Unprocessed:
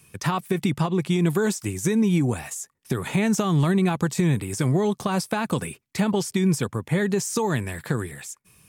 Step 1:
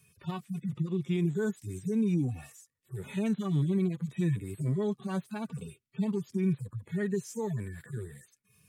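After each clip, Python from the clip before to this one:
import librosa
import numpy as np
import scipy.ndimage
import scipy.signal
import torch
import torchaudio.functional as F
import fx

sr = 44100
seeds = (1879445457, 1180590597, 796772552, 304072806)

y = fx.hpss_only(x, sr, part='harmonic')
y = fx.peak_eq(y, sr, hz=860.0, db=-7.5, octaves=0.66)
y = F.gain(torch.from_numpy(y), -7.0).numpy()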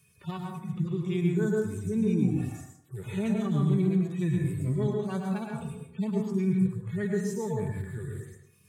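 y = fx.rev_plate(x, sr, seeds[0], rt60_s=0.74, hf_ratio=0.4, predelay_ms=95, drr_db=0.0)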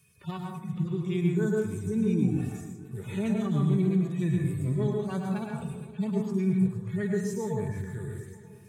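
y = fx.echo_feedback(x, sr, ms=467, feedback_pct=54, wet_db=-17.5)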